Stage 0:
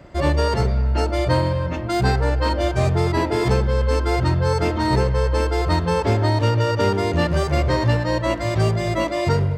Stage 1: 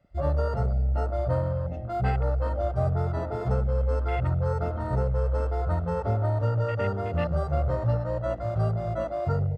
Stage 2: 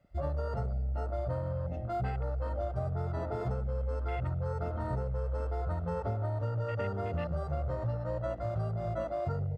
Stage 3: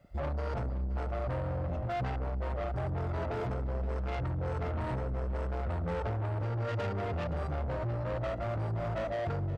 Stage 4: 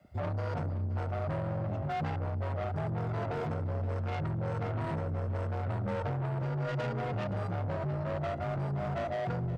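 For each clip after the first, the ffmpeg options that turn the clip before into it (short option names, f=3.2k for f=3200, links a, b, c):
-af "afwtdn=0.0501,aecho=1:1:1.5:0.65,volume=-9dB"
-af "acompressor=threshold=-28dB:ratio=6,volume=-2dB"
-af "asoftclip=type=tanh:threshold=-37.5dB,aecho=1:1:521:0.178,volume=6.5dB"
-af "afreqshift=28"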